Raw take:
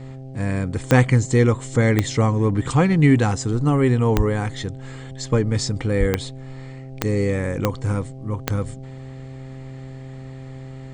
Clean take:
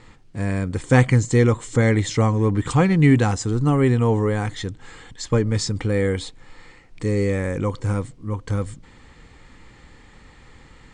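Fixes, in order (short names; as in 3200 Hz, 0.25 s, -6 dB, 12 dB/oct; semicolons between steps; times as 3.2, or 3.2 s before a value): de-click; de-hum 131.9 Hz, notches 6; de-plosive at 4.16/5.99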